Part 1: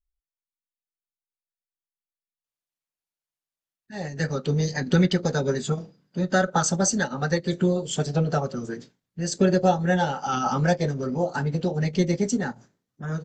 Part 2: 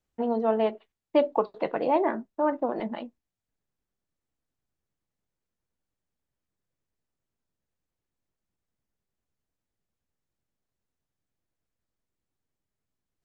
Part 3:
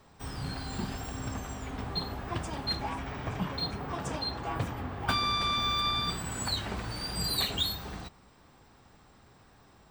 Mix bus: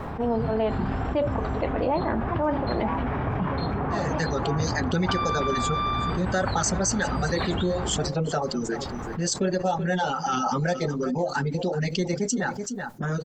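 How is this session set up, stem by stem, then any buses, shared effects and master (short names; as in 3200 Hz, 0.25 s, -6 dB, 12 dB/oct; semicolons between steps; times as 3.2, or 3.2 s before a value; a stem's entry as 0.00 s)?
-6.5 dB, 0.00 s, no send, echo send -20.5 dB, reverb removal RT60 0.95 s; bell 130 Hz -5 dB
-2.5 dB, 0.00 s, no send, no echo send, beating tremolo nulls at 3.2 Hz
-2.0 dB, 0.00 s, no send, no echo send, LPF 1600 Hz 12 dB/oct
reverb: off
echo: echo 0.379 s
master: fast leveller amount 70%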